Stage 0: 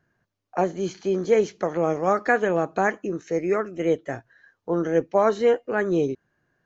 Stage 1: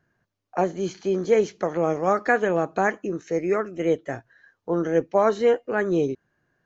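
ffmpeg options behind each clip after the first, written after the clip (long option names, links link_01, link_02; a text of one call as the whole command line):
ffmpeg -i in.wav -af anull out.wav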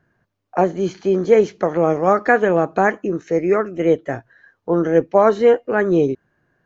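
ffmpeg -i in.wav -af "highshelf=frequency=3700:gain=-9,volume=6.5dB" out.wav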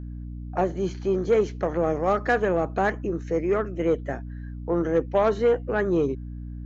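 ffmpeg -i in.wav -af "aeval=exprs='val(0)+0.0398*(sin(2*PI*60*n/s)+sin(2*PI*2*60*n/s)/2+sin(2*PI*3*60*n/s)/3+sin(2*PI*4*60*n/s)/4+sin(2*PI*5*60*n/s)/5)':channel_layout=same,aeval=exprs='0.841*(cos(1*acos(clip(val(0)/0.841,-1,1)))-cos(1*PI/2))+0.0596*(cos(5*acos(clip(val(0)/0.841,-1,1)))-cos(5*PI/2))':channel_layout=same,volume=-8.5dB" out.wav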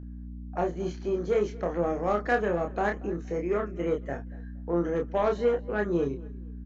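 ffmpeg -i in.wav -filter_complex "[0:a]asplit=2[link_01][link_02];[link_02]adelay=29,volume=-4dB[link_03];[link_01][link_03]amix=inputs=2:normalize=0,asplit=2[link_04][link_05];[link_05]adelay=234,lowpass=frequency=4400:poles=1,volume=-21.5dB,asplit=2[link_06][link_07];[link_07]adelay=234,lowpass=frequency=4400:poles=1,volume=0.29[link_08];[link_04][link_06][link_08]amix=inputs=3:normalize=0,volume=-5.5dB" out.wav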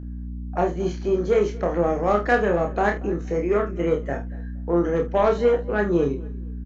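ffmpeg -i in.wav -filter_complex "[0:a]asplit=2[link_01][link_02];[link_02]adelay=49,volume=-11.5dB[link_03];[link_01][link_03]amix=inputs=2:normalize=0,volume=6dB" out.wav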